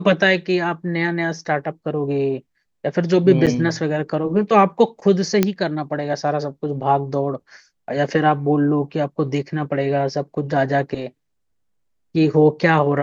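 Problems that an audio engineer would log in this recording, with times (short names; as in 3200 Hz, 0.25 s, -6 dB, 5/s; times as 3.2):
3.46–3.47 gap 7.4 ms
5.43 pop -3 dBFS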